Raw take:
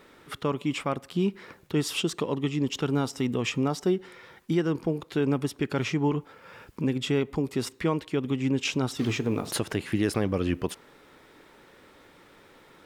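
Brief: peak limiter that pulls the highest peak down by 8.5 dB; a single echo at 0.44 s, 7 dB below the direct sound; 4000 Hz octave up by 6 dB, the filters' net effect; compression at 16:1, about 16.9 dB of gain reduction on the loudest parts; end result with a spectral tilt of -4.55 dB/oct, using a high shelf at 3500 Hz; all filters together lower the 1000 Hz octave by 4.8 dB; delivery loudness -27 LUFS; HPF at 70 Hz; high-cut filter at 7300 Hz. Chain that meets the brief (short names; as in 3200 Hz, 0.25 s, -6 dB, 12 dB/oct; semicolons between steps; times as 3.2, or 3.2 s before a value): HPF 70 Hz; LPF 7300 Hz; bell 1000 Hz -7 dB; high shelf 3500 Hz +3.5 dB; bell 4000 Hz +6.5 dB; compressor 16:1, threshold -38 dBFS; limiter -32.5 dBFS; echo 0.44 s -7 dB; gain +17 dB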